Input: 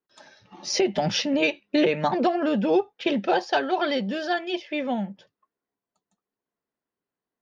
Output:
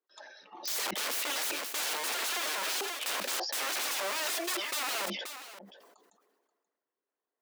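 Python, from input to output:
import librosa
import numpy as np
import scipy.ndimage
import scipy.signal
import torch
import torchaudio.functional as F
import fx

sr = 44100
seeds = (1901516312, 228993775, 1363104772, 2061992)

y = fx.envelope_sharpen(x, sr, power=1.5)
y = (np.mod(10.0 ** (28.0 / 20.0) * y + 1.0, 2.0) - 1.0) / 10.0 ** (28.0 / 20.0)
y = scipy.signal.sosfilt(scipy.signal.bessel(6, 450.0, 'highpass', norm='mag', fs=sr, output='sos'), y)
y = y + 10.0 ** (-15.0 / 20.0) * np.pad(y, (int(531 * sr / 1000.0), 0))[:len(y)]
y = fx.sustainer(y, sr, db_per_s=34.0)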